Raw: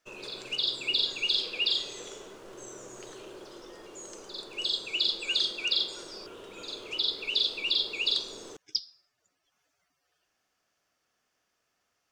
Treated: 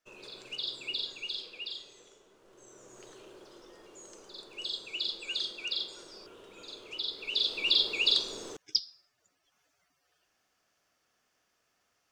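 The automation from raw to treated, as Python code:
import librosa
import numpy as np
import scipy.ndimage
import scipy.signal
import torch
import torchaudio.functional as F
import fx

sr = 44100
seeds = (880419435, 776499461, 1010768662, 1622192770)

y = fx.gain(x, sr, db=fx.line((0.86, -7.0), (2.24, -16.5), (3.01, -6.5), (7.11, -6.5), (7.71, 2.0)))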